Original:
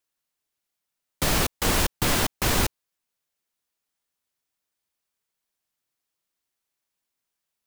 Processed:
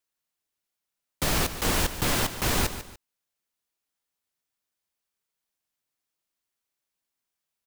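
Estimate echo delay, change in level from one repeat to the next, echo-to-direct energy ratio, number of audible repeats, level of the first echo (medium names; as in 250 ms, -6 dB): 146 ms, -10.0 dB, -11.5 dB, 2, -12.0 dB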